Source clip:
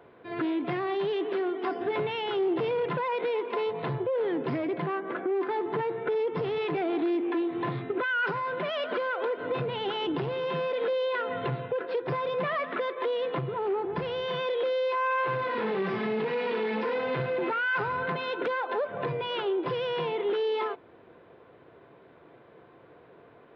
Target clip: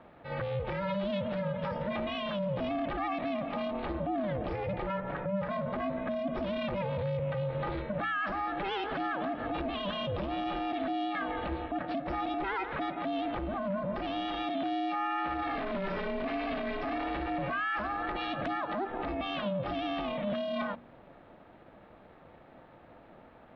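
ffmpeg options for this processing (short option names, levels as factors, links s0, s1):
-af "aeval=exprs='val(0)*sin(2*PI*200*n/s)':c=same,alimiter=level_in=1.5:limit=0.0631:level=0:latency=1:release=30,volume=0.668,bandreject=f=59.71:t=h:w=4,bandreject=f=119.42:t=h:w=4,bandreject=f=179.13:t=h:w=4,bandreject=f=238.84:t=h:w=4,bandreject=f=298.55:t=h:w=4,volume=1.33"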